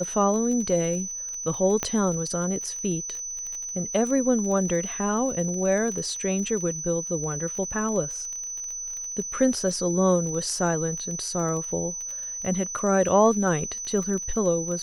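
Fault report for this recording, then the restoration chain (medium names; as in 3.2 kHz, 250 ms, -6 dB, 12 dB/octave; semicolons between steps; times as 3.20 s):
crackle 22 per s -31 dBFS
whine 6 kHz -31 dBFS
1.83 s: pop -11 dBFS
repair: de-click; band-stop 6 kHz, Q 30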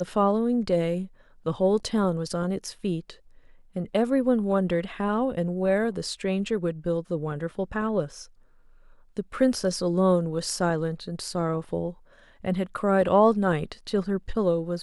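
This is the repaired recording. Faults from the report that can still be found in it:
nothing left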